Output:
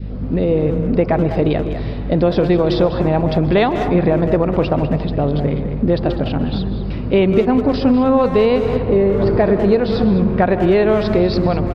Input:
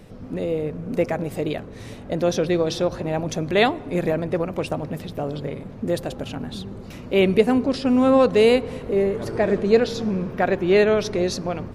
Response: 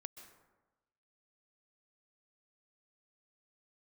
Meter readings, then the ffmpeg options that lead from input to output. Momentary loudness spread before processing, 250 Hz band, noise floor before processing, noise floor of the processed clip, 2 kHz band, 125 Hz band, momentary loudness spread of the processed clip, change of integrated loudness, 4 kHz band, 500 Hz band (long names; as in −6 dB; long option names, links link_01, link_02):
14 LU, +7.5 dB, −38 dBFS, −23 dBFS, +1.0 dB, +11.0 dB, 6 LU, +5.5 dB, +1.0 dB, +5.0 dB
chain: -filter_complex "[0:a]equalizer=frequency=120:width=0.32:gain=5.5,aresample=11025,aresample=44100,aeval=exprs='0.841*(cos(1*acos(clip(val(0)/0.841,-1,1)))-cos(1*PI/2))+0.0106*(cos(4*acos(clip(val(0)/0.841,-1,1)))-cos(4*PI/2))':channel_layout=same,aeval=exprs='val(0)+0.0224*(sin(2*PI*50*n/s)+sin(2*PI*2*50*n/s)/2+sin(2*PI*3*50*n/s)/3+sin(2*PI*4*50*n/s)/4+sin(2*PI*5*50*n/s)/5)':channel_layout=same,asplit=2[link_01][link_02];[1:a]atrim=start_sample=2205,lowshelf=frequency=370:gain=6[link_03];[link_02][link_03]afir=irnorm=-1:irlink=0,volume=3dB[link_04];[link_01][link_04]amix=inputs=2:normalize=0,adynamicequalizer=threshold=0.0794:dfrequency=920:dqfactor=1.1:tfrequency=920:tqfactor=1.1:attack=5:release=100:ratio=0.375:range=3.5:mode=boostabove:tftype=bell,acompressor=threshold=-10dB:ratio=12,asplit=2[link_05][link_06];[link_06]adelay=200,highpass=300,lowpass=3400,asoftclip=type=hard:threshold=-12.5dB,volume=-8dB[link_07];[link_05][link_07]amix=inputs=2:normalize=0"